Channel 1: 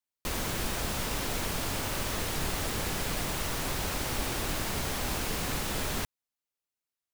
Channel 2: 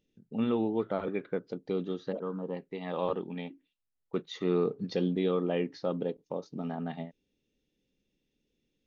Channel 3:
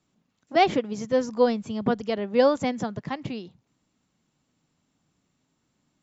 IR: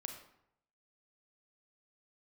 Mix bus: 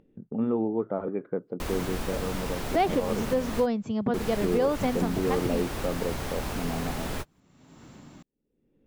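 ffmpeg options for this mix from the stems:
-filter_complex "[0:a]adelay=1350,volume=1dB[a];[1:a]agate=range=-33dB:threshold=-52dB:ratio=3:detection=peak,lowpass=1.3k,lowshelf=f=110:g=-3.5,volume=3dB,asplit=2[b][c];[2:a]adelay=2200,volume=2dB[d];[c]apad=whole_len=374314[e];[a][e]sidechaingate=range=-45dB:threshold=-55dB:ratio=16:detection=peak[f];[f][b][d]amix=inputs=3:normalize=0,highshelf=f=2.2k:g=-8,acompressor=mode=upward:threshold=-29dB:ratio=2.5,alimiter=limit=-15.5dB:level=0:latency=1:release=173"

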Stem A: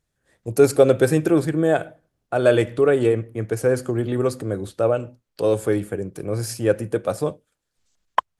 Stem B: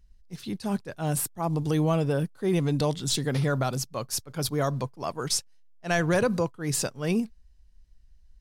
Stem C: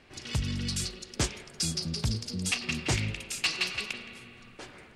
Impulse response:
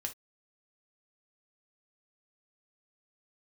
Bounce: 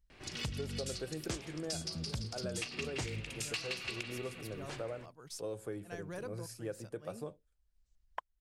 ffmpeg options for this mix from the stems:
-filter_complex "[0:a]volume=-18dB,asplit=2[a][b];[1:a]highshelf=f=12k:g=5.5,volume=-14.5dB[c];[2:a]adelay=100,volume=-0.5dB[d];[b]apad=whole_len=370849[e];[c][e]sidechaincompress=threshold=-44dB:ratio=4:attack=6.9:release=1000[f];[a][f][d]amix=inputs=3:normalize=0,equalizer=f=240:t=o:w=0.27:g=-2.5,acompressor=threshold=-36dB:ratio=6"

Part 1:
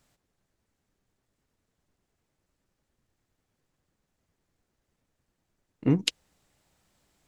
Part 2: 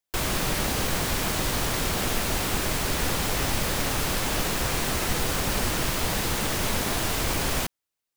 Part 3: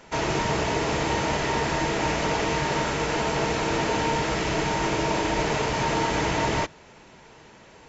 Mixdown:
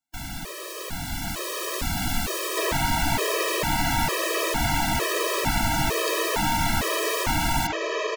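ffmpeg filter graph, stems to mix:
-filter_complex "[0:a]highpass=360,volume=-14.5dB[a];[1:a]volume=-6dB[b];[2:a]acrossover=split=460|5000[c][d][e];[c]acompressor=threshold=-39dB:ratio=4[f];[d]acompressor=threshold=-28dB:ratio=4[g];[e]acompressor=threshold=-53dB:ratio=4[h];[f][g][h]amix=inputs=3:normalize=0,adelay=2450,volume=-2.5dB[i];[a][b][i]amix=inputs=3:normalize=0,dynaudnorm=f=540:g=5:m=8.5dB,afftfilt=real='re*gt(sin(2*PI*1.1*pts/sr)*(1-2*mod(floor(b*sr/1024/330),2)),0)':imag='im*gt(sin(2*PI*1.1*pts/sr)*(1-2*mod(floor(b*sr/1024/330),2)),0)':win_size=1024:overlap=0.75"

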